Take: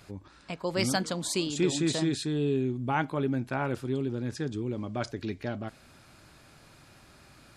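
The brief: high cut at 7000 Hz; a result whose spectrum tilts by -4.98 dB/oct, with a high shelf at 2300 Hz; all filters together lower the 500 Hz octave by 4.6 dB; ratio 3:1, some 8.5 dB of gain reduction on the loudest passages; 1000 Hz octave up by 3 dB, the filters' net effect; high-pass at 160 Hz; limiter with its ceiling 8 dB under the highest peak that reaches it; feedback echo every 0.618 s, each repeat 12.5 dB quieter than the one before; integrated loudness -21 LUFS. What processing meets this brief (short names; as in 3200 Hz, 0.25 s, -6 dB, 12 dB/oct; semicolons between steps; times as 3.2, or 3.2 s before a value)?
HPF 160 Hz; LPF 7000 Hz; bell 500 Hz -8 dB; bell 1000 Hz +7.5 dB; high shelf 2300 Hz -3.5 dB; compressor 3:1, threshold -33 dBFS; limiter -28 dBFS; feedback echo 0.618 s, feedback 24%, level -12.5 dB; gain +17.5 dB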